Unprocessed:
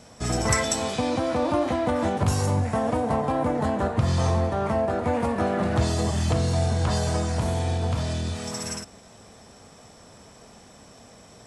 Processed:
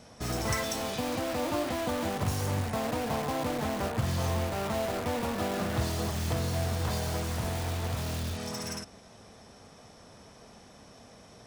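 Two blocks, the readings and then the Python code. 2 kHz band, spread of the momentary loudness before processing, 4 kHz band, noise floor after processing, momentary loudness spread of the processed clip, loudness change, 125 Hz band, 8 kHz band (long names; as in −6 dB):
−4.0 dB, 6 LU, −3.5 dB, −53 dBFS, 4 LU, −6.5 dB, −7.5 dB, −6.0 dB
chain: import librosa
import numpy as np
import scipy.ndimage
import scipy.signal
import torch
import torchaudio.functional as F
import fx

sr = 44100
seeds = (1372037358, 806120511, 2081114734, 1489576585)

p1 = fx.notch(x, sr, hz=7600.0, q=6.0)
p2 = (np.mod(10.0 ** (24.5 / 20.0) * p1 + 1.0, 2.0) - 1.0) / 10.0 ** (24.5 / 20.0)
p3 = p1 + (p2 * librosa.db_to_amplitude(-4.0))
y = p3 * librosa.db_to_amplitude(-7.5)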